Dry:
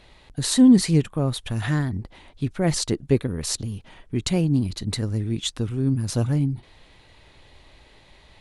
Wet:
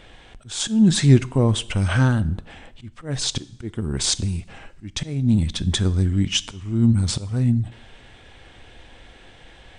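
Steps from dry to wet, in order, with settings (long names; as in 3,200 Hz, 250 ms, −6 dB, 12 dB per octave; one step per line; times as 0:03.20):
volume swells 318 ms
change of speed 0.859×
coupled-rooms reverb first 0.7 s, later 2.6 s, from −26 dB, DRR 16.5 dB
level +5.5 dB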